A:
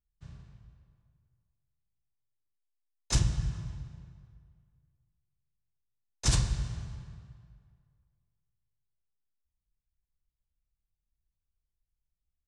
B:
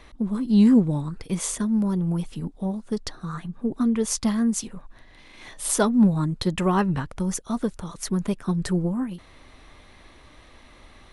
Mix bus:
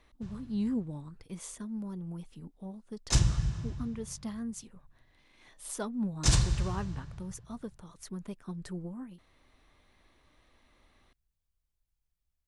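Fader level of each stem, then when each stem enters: +1.5, −15.5 decibels; 0.00, 0.00 seconds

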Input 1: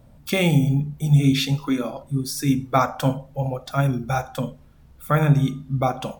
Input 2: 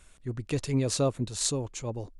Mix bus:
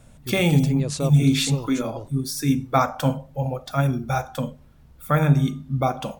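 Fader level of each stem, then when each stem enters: −0.5, −0.5 decibels; 0.00, 0.00 seconds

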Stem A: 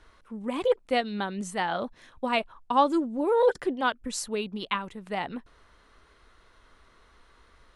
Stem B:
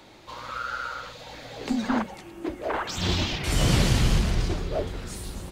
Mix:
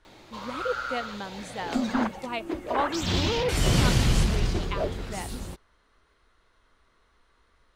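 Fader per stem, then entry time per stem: −6.5, −0.5 decibels; 0.00, 0.05 seconds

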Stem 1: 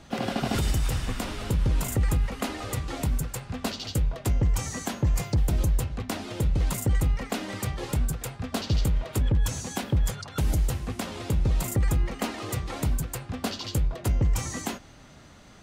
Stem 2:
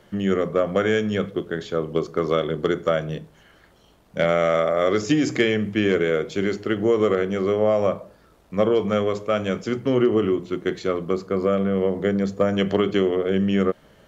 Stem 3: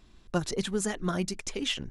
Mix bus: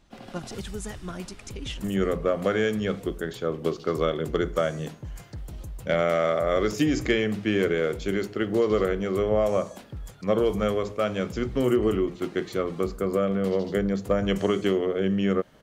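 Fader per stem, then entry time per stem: −14.5, −3.5, −6.5 decibels; 0.00, 1.70, 0.00 seconds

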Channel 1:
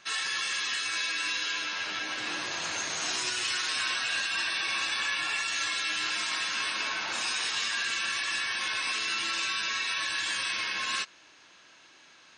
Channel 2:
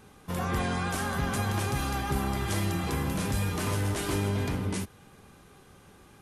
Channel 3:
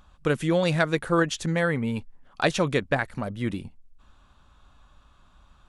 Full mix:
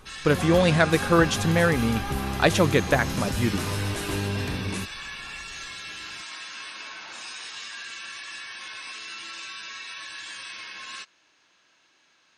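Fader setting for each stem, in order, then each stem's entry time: −7.5, 0.0, +3.0 decibels; 0.00, 0.00, 0.00 seconds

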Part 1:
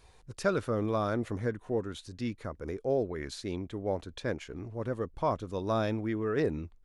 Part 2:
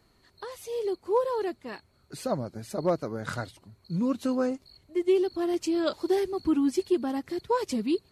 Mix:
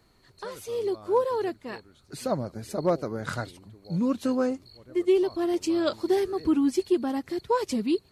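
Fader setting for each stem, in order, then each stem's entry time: −17.0, +1.5 decibels; 0.00, 0.00 seconds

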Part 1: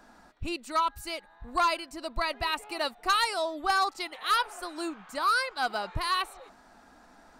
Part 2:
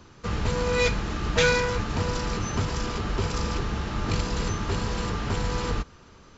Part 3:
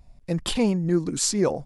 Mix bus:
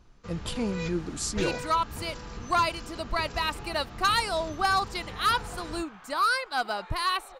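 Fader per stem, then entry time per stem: +1.0, −13.0, −8.0 decibels; 0.95, 0.00, 0.00 seconds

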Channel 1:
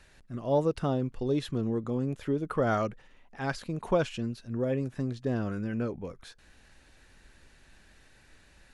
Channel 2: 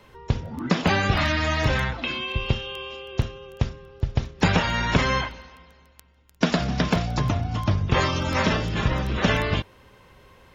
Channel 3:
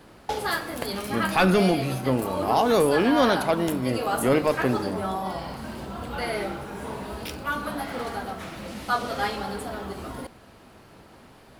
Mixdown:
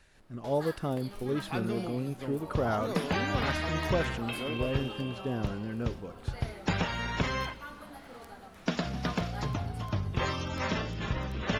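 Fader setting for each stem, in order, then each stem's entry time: −3.5, −9.5, −16.5 decibels; 0.00, 2.25, 0.15 seconds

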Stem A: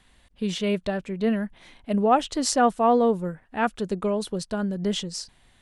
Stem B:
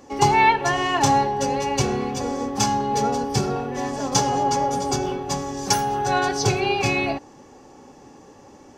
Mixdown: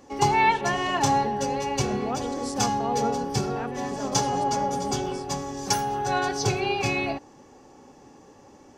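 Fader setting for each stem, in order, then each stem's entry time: −12.5, −4.0 decibels; 0.00, 0.00 seconds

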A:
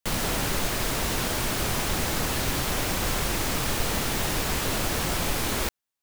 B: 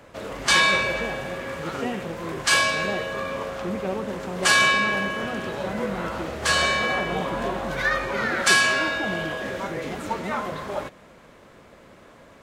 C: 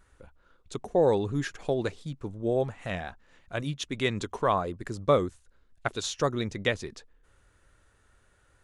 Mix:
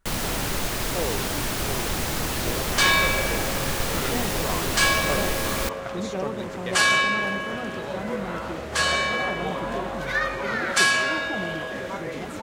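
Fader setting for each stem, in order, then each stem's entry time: 0.0, −1.5, −8.0 decibels; 0.00, 2.30, 0.00 seconds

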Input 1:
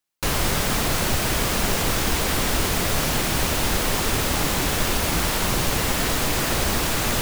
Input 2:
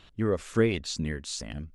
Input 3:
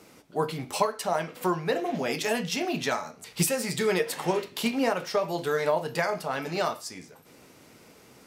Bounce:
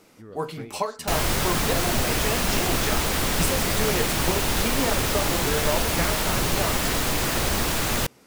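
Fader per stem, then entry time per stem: −1.5, −17.5, −2.0 decibels; 0.85, 0.00, 0.00 seconds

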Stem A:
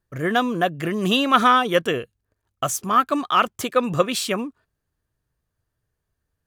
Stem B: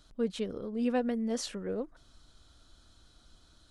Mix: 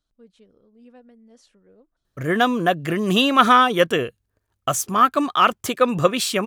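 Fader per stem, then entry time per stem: +2.0, −19.0 decibels; 2.05, 0.00 seconds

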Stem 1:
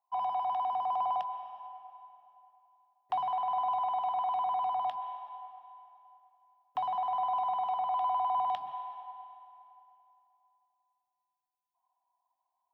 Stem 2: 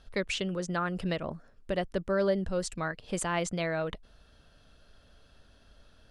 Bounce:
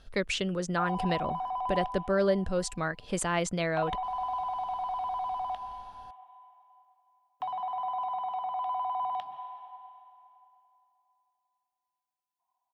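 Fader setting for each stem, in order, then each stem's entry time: −2.0, +1.5 decibels; 0.65, 0.00 seconds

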